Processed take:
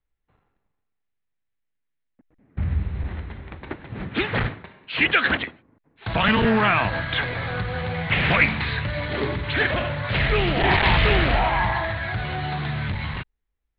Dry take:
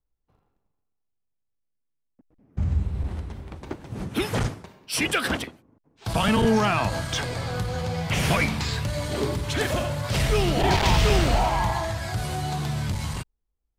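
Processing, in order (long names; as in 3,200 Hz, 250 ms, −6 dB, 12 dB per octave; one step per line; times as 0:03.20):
Butterworth low-pass 4,100 Hz 96 dB per octave
parametric band 1,900 Hz +10 dB 1 octave
highs frequency-modulated by the lows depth 0.29 ms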